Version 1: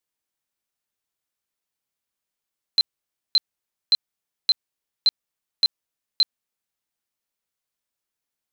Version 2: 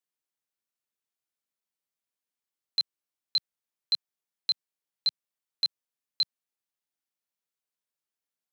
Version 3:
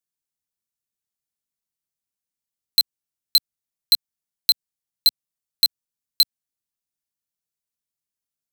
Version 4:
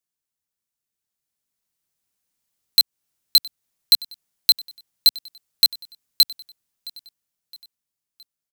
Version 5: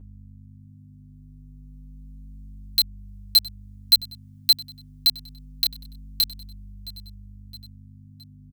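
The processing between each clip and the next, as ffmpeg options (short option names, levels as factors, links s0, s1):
-af "highpass=130,volume=0.447"
-af "aeval=exprs='0.119*(cos(1*acos(clip(val(0)/0.119,-1,1)))-cos(1*PI/2))+0.00841*(cos(2*acos(clip(val(0)/0.119,-1,1)))-cos(2*PI/2))+0.0211*(cos(6*acos(clip(val(0)/0.119,-1,1)))-cos(6*PI/2))+0.0133*(cos(7*acos(clip(val(0)/0.119,-1,1)))-cos(7*PI/2))+0.0211*(cos(8*acos(clip(val(0)/0.119,-1,1)))-cos(8*PI/2))':c=same,acompressor=threshold=0.0562:ratio=6,bass=f=250:g=12,treble=f=4000:g=8,volume=2.51"
-af "alimiter=limit=0.224:level=0:latency=1:release=305,dynaudnorm=f=200:g=17:m=3.76,aecho=1:1:666|1332|1998:0.0841|0.0412|0.0202,volume=1.19"
-filter_complex "[0:a]aeval=exprs='val(0)+0.0112*(sin(2*PI*50*n/s)+sin(2*PI*2*50*n/s)/2+sin(2*PI*3*50*n/s)/3+sin(2*PI*4*50*n/s)/4+sin(2*PI*5*50*n/s)/5)':c=same,asplit=2[s0][s1];[s1]adelay=7.5,afreqshift=-0.27[s2];[s0][s2]amix=inputs=2:normalize=1"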